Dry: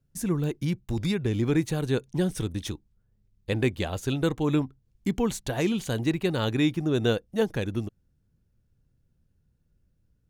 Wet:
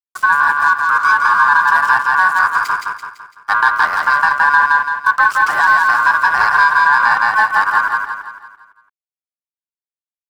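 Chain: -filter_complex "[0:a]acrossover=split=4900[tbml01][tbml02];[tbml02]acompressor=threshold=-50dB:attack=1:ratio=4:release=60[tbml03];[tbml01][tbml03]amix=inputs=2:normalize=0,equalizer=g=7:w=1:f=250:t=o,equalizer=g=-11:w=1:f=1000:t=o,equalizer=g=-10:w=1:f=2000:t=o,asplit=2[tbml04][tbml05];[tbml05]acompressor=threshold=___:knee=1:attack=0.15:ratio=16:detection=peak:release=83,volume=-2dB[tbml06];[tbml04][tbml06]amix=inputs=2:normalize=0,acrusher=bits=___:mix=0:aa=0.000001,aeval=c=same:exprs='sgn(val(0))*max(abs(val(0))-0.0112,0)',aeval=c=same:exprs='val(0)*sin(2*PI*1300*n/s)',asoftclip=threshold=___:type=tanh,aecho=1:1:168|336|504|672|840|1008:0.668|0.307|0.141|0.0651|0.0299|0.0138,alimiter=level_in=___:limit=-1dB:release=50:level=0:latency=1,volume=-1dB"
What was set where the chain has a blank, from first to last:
-32dB, 10, -10.5dB, 14.5dB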